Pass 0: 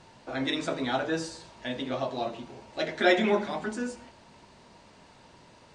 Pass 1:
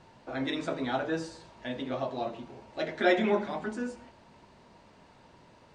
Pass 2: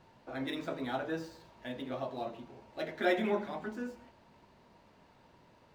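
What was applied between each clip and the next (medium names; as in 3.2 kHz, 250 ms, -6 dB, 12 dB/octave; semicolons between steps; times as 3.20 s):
treble shelf 3.3 kHz -8 dB; trim -1.5 dB
median filter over 5 samples; trim -5 dB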